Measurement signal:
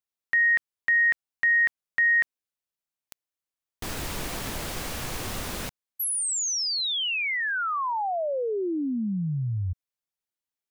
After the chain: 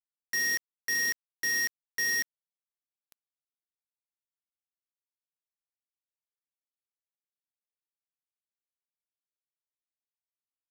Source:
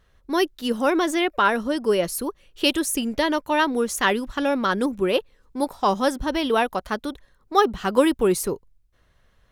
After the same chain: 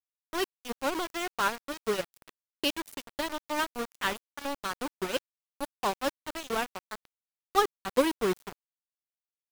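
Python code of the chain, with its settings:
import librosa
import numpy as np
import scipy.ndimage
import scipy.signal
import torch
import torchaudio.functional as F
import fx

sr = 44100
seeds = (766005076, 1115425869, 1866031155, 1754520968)

y = fx.dmg_noise_band(x, sr, seeds[0], low_hz=180.0, high_hz=490.0, level_db=-47.0)
y = np.where(np.abs(y) >= 10.0 ** (-19.0 / 20.0), y, 0.0)
y = fx.upward_expand(y, sr, threshold_db=-40.0, expansion=1.5)
y = y * 10.0 ** (-5.5 / 20.0)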